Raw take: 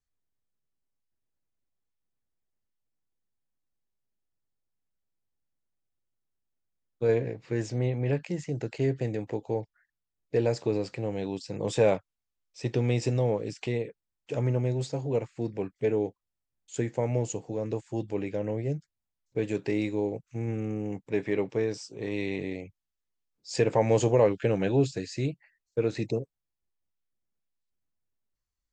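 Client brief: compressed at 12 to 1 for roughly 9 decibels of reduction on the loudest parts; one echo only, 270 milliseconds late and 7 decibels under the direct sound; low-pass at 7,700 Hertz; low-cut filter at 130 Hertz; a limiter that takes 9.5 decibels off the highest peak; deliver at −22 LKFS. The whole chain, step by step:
high-pass filter 130 Hz
low-pass filter 7,700 Hz
downward compressor 12 to 1, threshold −26 dBFS
brickwall limiter −24.5 dBFS
single-tap delay 270 ms −7 dB
level +13.5 dB

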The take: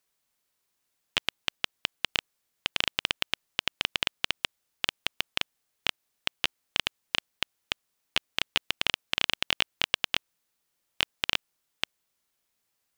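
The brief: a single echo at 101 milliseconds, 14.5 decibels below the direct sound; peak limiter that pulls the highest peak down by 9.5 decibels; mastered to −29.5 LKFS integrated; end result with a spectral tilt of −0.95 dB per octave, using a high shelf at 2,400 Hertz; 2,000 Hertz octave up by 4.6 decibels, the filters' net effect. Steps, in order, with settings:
parametric band 2,000 Hz +9 dB
high-shelf EQ 2,400 Hz −5 dB
brickwall limiter −13.5 dBFS
single-tap delay 101 ms −14.5 dB
level +9 dB

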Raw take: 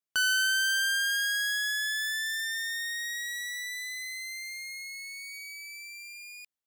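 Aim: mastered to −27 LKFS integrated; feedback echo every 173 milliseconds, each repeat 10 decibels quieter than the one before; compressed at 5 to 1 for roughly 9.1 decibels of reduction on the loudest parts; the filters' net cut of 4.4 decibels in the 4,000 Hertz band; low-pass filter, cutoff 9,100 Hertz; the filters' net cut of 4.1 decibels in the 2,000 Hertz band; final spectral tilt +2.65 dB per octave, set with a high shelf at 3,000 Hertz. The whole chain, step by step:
low-pass filter 9,100 Hz
parametric band 2,000 Hz −6 dB
high-shelf EQ 3,000 Hz +6 dB
parametric band 4,000 Hz −8.5 dB
downward compressor 5 to 1, threshold −37 dBFS
repeating echo 173 ms, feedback 32%, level −10 dB
level +11.5 dB

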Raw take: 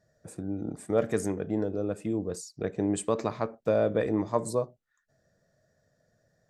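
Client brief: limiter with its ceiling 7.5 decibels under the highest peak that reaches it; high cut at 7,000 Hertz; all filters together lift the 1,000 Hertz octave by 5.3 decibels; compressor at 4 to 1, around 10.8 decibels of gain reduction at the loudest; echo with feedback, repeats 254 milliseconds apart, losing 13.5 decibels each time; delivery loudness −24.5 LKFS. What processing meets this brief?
low-pass filter 7,000 Hz
parametric band 1,000 Hz +6.5 dB
downward compressor 4 to 1, threshold −31 dBFS
brickwall limiter −24.5 dBFS
repeating echo 254 ms, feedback 21%, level −13.5 dB
level +13.5 dB

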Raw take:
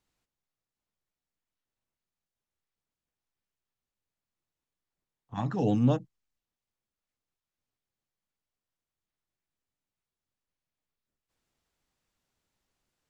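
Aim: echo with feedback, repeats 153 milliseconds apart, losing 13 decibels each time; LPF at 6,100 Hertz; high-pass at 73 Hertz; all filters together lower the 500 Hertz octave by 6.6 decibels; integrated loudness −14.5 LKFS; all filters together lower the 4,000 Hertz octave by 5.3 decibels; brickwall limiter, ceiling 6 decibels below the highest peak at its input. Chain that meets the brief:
high-pass filter 73 Hz
low-pass filter 6,100 Hz
parametric band 500 Hz −8 dB
parametric band 4,000 Hz −6.5 dB
brickwall limiter −21 dBFS
repeating echo 153 ms, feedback 22%, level −13 dB
level +18 dB

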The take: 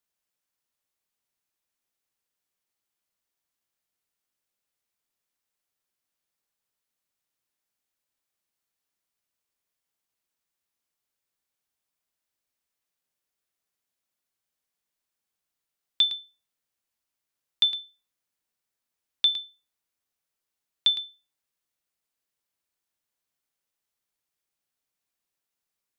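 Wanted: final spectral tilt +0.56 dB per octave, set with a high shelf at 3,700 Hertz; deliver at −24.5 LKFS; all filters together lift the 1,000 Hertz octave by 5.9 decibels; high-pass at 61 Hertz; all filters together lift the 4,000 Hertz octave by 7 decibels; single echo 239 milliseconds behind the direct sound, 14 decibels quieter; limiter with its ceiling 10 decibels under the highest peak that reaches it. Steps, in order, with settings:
high-pass filter 61 Hz
parametric band 1,000 Hz +6.5 dB
high-shelf EQ 3,700 Hz +7.5 dB
parametric band 4,000 Hz +3.5 dB
brickwall limiter −14.5 dBFS
single-tap delay 239 ms −14 dB
level −1.5 dB

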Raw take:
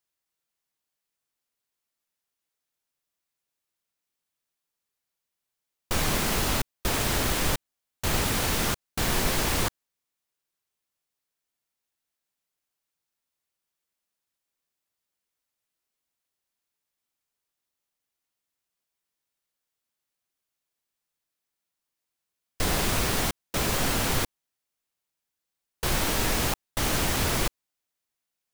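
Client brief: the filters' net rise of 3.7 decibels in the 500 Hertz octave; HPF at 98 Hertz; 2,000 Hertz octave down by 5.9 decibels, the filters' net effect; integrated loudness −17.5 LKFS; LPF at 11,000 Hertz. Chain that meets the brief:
high-pass filter 98 Hz
low-pass filter 11,000 Hz
parametric band 500 Hz +5 dB
parametric band 2,000 Hz −8 dB
level +10.5 dB

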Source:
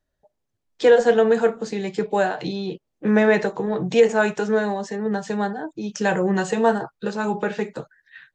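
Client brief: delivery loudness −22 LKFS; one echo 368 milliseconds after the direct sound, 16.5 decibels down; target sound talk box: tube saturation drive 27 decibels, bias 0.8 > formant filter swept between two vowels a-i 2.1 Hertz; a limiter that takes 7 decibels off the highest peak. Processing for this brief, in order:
brickwall limiter −12 dBFS
single-tap delay 368 ms −16.5 dB
tube saturation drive 27 dB, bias 0.8
formant filter swept between two vowels a-i 2.1 Hz
level +21 dB

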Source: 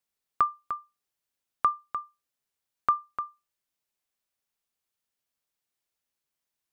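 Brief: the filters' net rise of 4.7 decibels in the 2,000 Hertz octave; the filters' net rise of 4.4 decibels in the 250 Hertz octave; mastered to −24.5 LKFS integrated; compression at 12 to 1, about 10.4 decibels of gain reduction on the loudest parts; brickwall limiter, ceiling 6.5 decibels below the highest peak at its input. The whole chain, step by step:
parametric band 250 Hz +5.5 dB
parametric band 2,000 Hz +6.5 dB
downward compressor 12 to 1, threshold −27 dBFS
level +14.5 dB
brickwall limiter −2.5 dBFS

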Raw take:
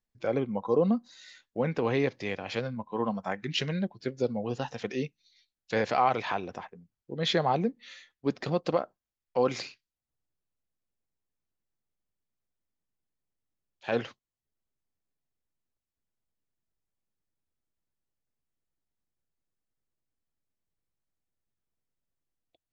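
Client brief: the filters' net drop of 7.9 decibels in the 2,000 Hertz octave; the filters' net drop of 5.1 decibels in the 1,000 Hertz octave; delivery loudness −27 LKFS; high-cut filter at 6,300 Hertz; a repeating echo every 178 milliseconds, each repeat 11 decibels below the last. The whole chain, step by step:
low-pass filter 6,300 Hz
parametric band 1,000 Hz −5.5 dB
parametric band 2,000 Hz −8.5 dB
repeating echo 178 ms, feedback 28%, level −11 dB
level +5 dB

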